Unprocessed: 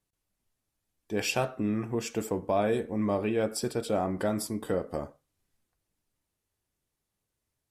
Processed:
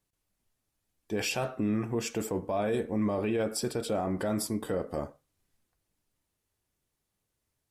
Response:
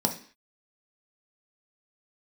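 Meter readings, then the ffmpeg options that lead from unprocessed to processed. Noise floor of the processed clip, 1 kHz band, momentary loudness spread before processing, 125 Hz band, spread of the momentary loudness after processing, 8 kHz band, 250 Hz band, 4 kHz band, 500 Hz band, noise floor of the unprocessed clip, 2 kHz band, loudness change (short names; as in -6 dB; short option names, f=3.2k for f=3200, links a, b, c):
-83 dBFS, -2.5 dB, 5 LU, -0.5 dB, 4 LU, +0.5 dB, 0.0 dB, 0.0 dB, -2.0 dB, -84 dBFS, -1.5 dB, -1.0 dB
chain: -af "alimiter=limit=-23dB:level=0:latency=1:release=13,volume=1.5dB"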